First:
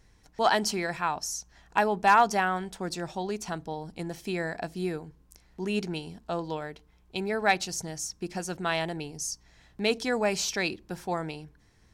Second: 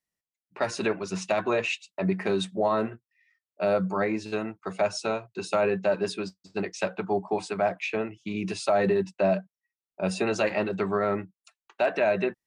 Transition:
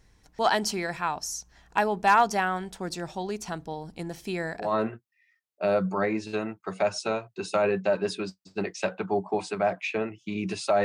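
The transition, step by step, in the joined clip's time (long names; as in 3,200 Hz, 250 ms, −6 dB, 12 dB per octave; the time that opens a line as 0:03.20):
first
0:04.66: continue with second from 0:02.65, crossfade 0.16 s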